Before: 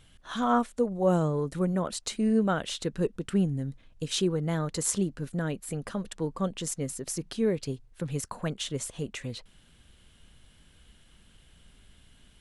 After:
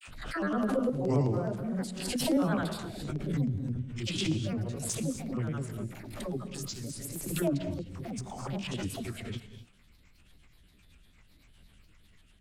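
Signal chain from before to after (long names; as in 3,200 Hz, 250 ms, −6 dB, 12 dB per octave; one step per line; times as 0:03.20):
spectrum averaged block by block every 50 ms
granular cloud, pitch spread up and down by 7 semitones
rotating-speaker cabinet horn 0.7 Hz, later 8 Hz, at 0:04.67
all-pass dispersion lows, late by 63 ms, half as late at 550 Hz
pitch vibrato 0.88 Hz 24 cents
auto-filter notch square 9.5 Hz 440–6,100 Hz
reverb whose tail is shaped and stops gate 280 ms rising, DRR 9 dB
background raised ahead of every attack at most 51 dB per second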